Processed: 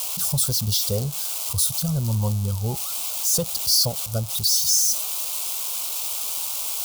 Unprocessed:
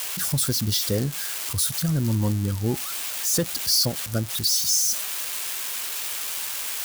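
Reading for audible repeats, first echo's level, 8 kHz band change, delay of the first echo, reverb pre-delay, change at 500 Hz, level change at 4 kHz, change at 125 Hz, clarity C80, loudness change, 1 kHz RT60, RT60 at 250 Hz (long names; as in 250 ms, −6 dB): no echo audible, no echo audible, +2.5 dB, no echo audible, no reverb audible, −0.5 dB, +1.0 dB, +1.0 dB, no reverb audible, +2.0 dB, no reverb audible, no reverb audible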